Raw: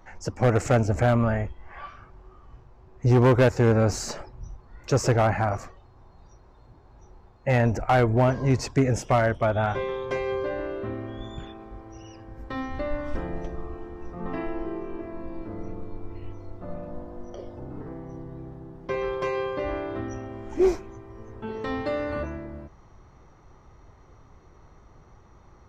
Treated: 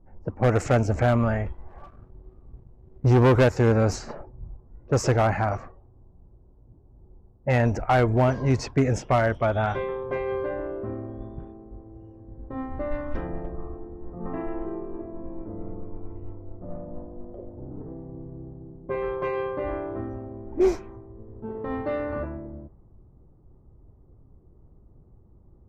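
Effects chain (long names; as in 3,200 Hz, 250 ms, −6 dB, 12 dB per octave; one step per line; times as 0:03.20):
low-pass that shuts in the quiet parts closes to 320 Hz, open at −18 dBFS
0:01.46–0:03.44: leveller curve on the samples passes 1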